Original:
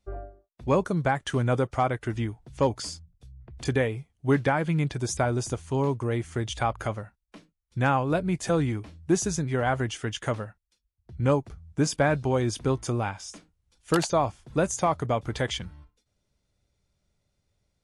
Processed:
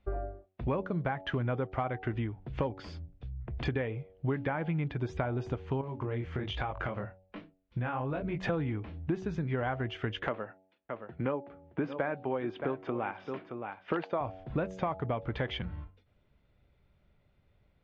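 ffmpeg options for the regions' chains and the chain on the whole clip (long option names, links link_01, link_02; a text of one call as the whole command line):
ffmpeg -i in.wav -filter_complex "[0:a]asettb=1/sr,asplit=3[link_01][link_02][link_03];[link_01]atrim=end=5.814[link_04];[link_02]atrim=start=5.81:end=8.43,asetpts=PTS-STARTPTS,afade=type=in:duration=0.004:curve=qsin,afade=type=out:start_time=2.616:duration=0.004:curve=qsin,flanger=delay=19.5:depth=5.4:speed=1.2,acompressor=threshold=-33dB:ratio=3:attack=3.2:release=140:knee=1:detection=peak[link_05];[link_03]atrim=start=8.426[link_06];[link_04][link_05]acrossfade=duration=0.004:curve1=hsin:curve2=qsin[link_07];[link_07][link_06]acrossfade=duration=0.004:curve1=qsin:curve2=hsin,asettb=1/sr,asplit=3[link_08][link_09][link_10];[link_08]atrim=end=10.274[link_11];[link_09]atrim=start=10.27:end=14.21,asetpts=PTS-STARTPTS,afade=type=in:duration=0.004:curve=qsin,afade=type=out:start_time=3.936:duration=0.004:curve=qsin,highpass=250,lowpass=3000,aecho=1:1:621:0.158,atrim=end_sample=173754[link_12];[link_10]atrim=start=14.206[link_13];[link_11][link_12]acrossfade=duration=0.004:curve1=hsin:curve2=qsin[link_14];[link_14][link_13]acrossfade=duration=0.004:curve1=qsin:curve2=hsin,lowpass=frequency=3000:width=0.5412,lowpass=frequency=3000:width=1.3066,bandreject=frequency=94.11:width_type=h:width=4,bandreject=frequency=188.22:width_type=h:width=4,bandreject=frequency=282.33:width_type=h:width=4,bandreject=frequency=376.44:width_type=h:width=4,bandreject=frequency=470.55:width_type=h:width=4,bandreject=frequency=564.66:width_type=h:width=4,bandreject=frequency=658.77:width_type=h:width=4,bandreject=frequency=752.88:width_type=h:width=4,bandreject=frequency=846.99:width_type=h:width=4,acompressor=threshold=-38dB:ratio=5,volume=7dB" out.wav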